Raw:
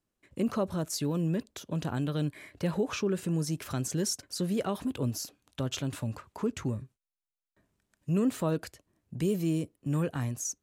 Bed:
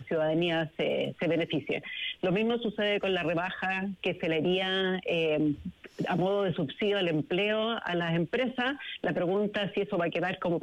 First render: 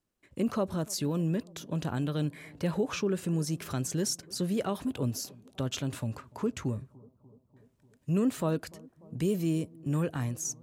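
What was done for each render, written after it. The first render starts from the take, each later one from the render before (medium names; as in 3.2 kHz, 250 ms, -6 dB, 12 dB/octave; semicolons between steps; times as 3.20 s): bucket-brigade echo 294 ms, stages 2048, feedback 69%, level -23.5 dB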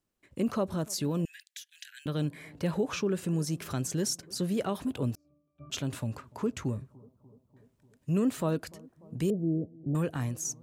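1.25–2.06 s: steep high-pass 1.6 kHz 96 dB/octave; 5.15–5.70 s: pitch-class resonator D, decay 0.57 s; 9.30–9.95 s: elliptic low-pass 770 Hz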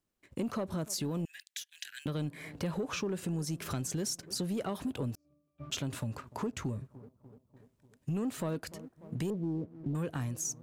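waveshaping leveller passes 1; compression 3:1, threshold -34 dBFS, peak gain reduction 9.5 dB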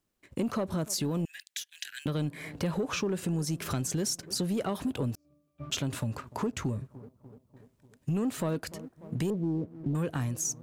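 trim +4 dB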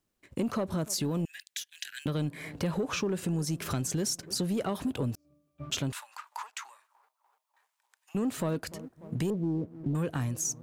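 5.92–8.15 s: Chebyshev high-pass 860 Hz, order 4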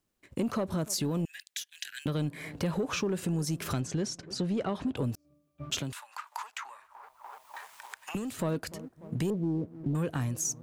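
3.80–4.97 s: distance through air 97 m; 5.79–8.39 s: three bands compressed up and down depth 100%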